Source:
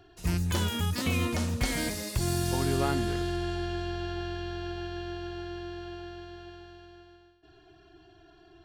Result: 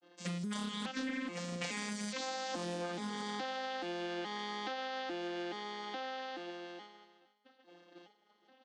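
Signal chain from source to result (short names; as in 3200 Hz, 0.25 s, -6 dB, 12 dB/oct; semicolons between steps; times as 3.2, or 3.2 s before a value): arpeggiated vocoder minor triad, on F3, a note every 0.424 s; expander -53 dBFS; tilt +3.5 dB/oct; comb 3.9 ms, depth 97%; compressor 10:1, threshold -42 dBFS, peak gain reduction 18 dB; on a send: echo 0.464 s -21 dB; on the sum: Doppler distortion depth 0.39 ms; gain +6 dB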